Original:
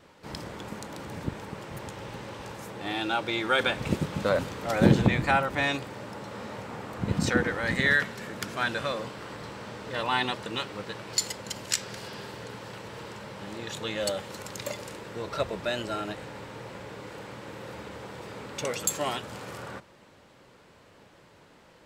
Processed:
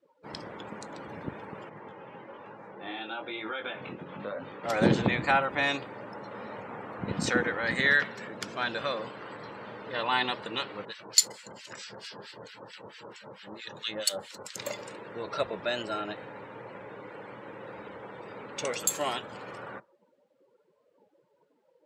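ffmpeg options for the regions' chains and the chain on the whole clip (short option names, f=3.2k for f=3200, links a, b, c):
-filter_complex "[0:a]asettb=1/sr,asplit=3[a][b][c];[a]atrim=end=1.694[d];[b]atrim=start=1.69:end=4.64,asetpts=PTS-STARTPTS,afade=t=in:d=0.004:c=qsin,afade=t=out:st=2.946:d=0.004:c=qsin,acompressor=threshold=-28dB:ratio=4:attack=3.2:release=140:knee=1:detection=peak,flanger=delay=18.5:depth=4.6:speed=1.1,highpass=120,lowpass=4.5k[e];[c]atrim=start=4.636[f];[d][e]acrossfade=d=0.004:c1=hsin:c2=qsin[g];[g][f]acrossfade=d=0.004:c1=qsin:c2=hsin,asettb=1/sr,asplit=3[h][i][j];[h]atrim=end=8.284[k];[i]atrim=start=8.28:end=8.81,asetpts=PTS-STARTPTS,afade=t=in:d=0.004:c=qsin,afade=t=out:st=0.526:d=0.004:c=qsin,lowpass=10k,equalizer=f=1.6k:t=o:w=1.1:g=-3.5[l];[j]atrim=start=8.806[m];[k][l]acrossfade=d=0.004:c1=hsin:c2=qsin[n];[n][m]acrossfade=d=0.004:c1=qsin:c2=hsin,asettb=1/sr,asplit=3[o][p][q];[o]atrim=end=10.854[r];[p]atrim=start=10.85:end=14.56,asetpts=PTS-STARTPTS,afade=t=in:d=0.004:c=qsin,afade=t=out:st=3.706:d=0.004:c=qsin,highshelf=f=2.4k:g=7,acrossover=split=1400[s][t];[s]aeval=exprs='val(0)*(1-1/2+1/2*cos(2*PI*4.5*n/s))':c=same[u];[t]aeval=exprs='val(0)*(1-1/2-1/2*cos(2*PI*4.5*n/s))':c=same[v];[u][v]amix=inputs=2:normalize=0[w];[q]atrim=start=14.556[x];[r][w]acrossfade=d=0.004:c1=hsin:c2=qsin[y];[y][x]acrossfade=d=0.004:c1=qsin:c2=hsin,highpass=f=270:p=1,afftdn=nr=25:nf=-48"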